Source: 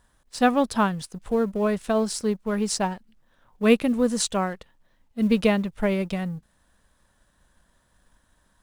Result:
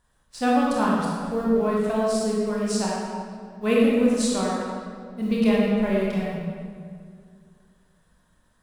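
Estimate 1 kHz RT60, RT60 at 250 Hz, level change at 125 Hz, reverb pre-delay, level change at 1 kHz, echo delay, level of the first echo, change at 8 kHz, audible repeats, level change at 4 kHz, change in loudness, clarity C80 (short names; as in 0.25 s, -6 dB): 2.0 s, 2.5 s, +0.5 dB, 22 ms, +0.5 dB, none, none, -2.0 dB, none, -1.5 dB, +0.5 dB, 0.0 dB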